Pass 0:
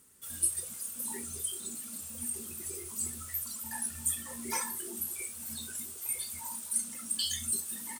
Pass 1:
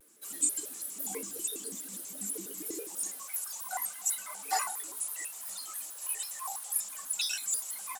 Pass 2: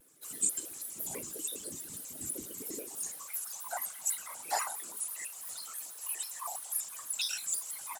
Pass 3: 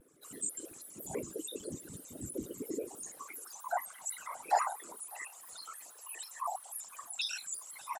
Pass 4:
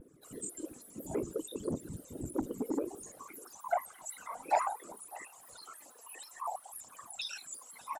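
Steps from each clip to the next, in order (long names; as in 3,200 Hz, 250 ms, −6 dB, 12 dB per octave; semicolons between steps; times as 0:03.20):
high-pass filter sweep 330 Hz → 810 Hz, 0:02.59–0:03.42; pitch modulation by a square or saw wave square 6.1 Hz, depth 250 cents
random phases in short frames; level −2 dB
spectral envelope exaggerated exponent 1.5; low-pass filter 1,800 Hz 6 dB per octave; single-tap delay 599 ms −23.5 dB; level +5.5 dB
phase shifter 0.58 Hz, delay 4.5 ms, feedback 40%; tilt shelving filter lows +6.5 dB, about 800 Hz; saturating transformer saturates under 850 Hz; level +1 dB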